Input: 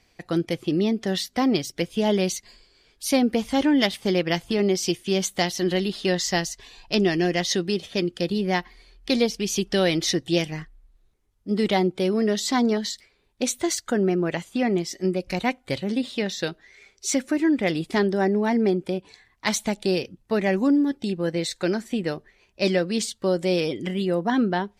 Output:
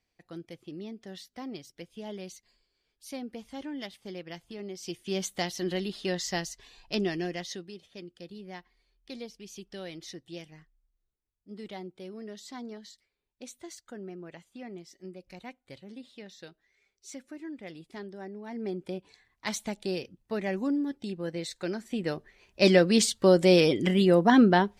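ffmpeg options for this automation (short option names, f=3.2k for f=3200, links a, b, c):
-af "volume=15dB,afade=t=in:st=4.76:d=0.4:silence=0.298538,afade=t=out:st=6.99:d=0.72:silence=0.251189,afade=t=in:st=18.45:d=0.47:silence=0.281838,afade=t=in:st=21.81:d=1.06:silence=0.251189"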